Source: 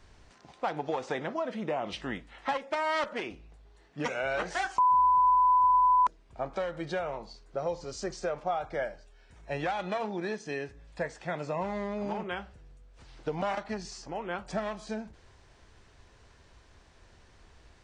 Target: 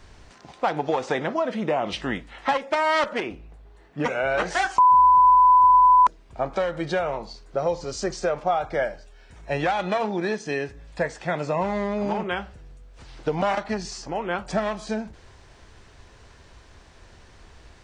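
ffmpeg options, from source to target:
-filter_complex "[0:a]asettb=1/sr,asplit=3[s0][s1][s2];[s0]atrim=end=3.204[s3];[s1]atrim=start=3.2:end=4.38,asetpts=PTS-STARTPTS,afade=t=in:d=0.004:c=qsin,afade=t=out:st=1.176:d=0.004:c=qsin,equalizer=f=5700:w=0.59:g=-8[s4];[s2]atrim=start=4.376[s5];[s3][s4]acrossfade=d=0.004:c1=hsin:c2=qsin[s6];[s6][s5]acrossfade=d=0.004:c1=qsin:c2=hsin,volume=2.51"

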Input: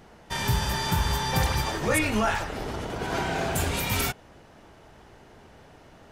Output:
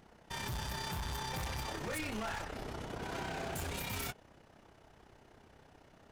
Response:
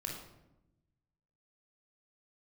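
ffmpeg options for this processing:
-af "tremolo=f=32:d=0.621,asoftclip=type=hard:threshold=0.0335,volume=0.473"

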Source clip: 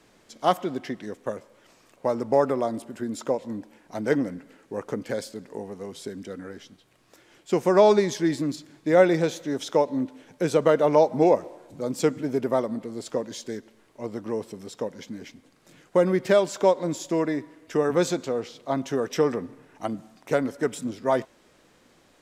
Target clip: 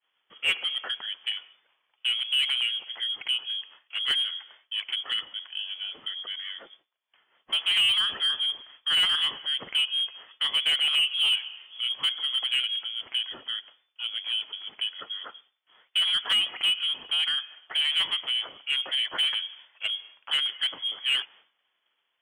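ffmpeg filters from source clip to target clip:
-filter_complex "[0:a]agate=range=0.0224:threshold=0.00501:ratio=3:detection=peak,lowpass=f=3000:t=q:w=0.5098,lowpass=f=3000:t=q:w=0.6013,lowpass=f=3000:t=q:w=0.9,lowpass=f=3000:t=q:w=2.563,afreqshift=-3500,asplit=2[s0][s1];[s1]highpass=f=720:p=1,volume=8.91,asoftclip=type=tanh:threshold=0.562[s2];[s0][s2]amix=inputs=2:normalize=0,lowpass=f=1000:p=1,volume=0.501,volume=0.794"

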